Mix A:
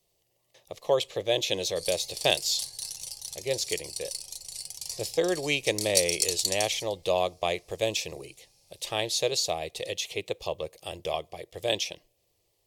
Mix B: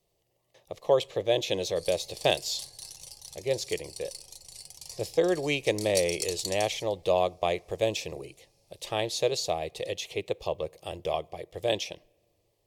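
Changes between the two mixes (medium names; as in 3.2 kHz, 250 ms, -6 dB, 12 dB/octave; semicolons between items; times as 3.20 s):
speech: send +11.0 dB; master: add treble shelf 2.1 kHz -8 dB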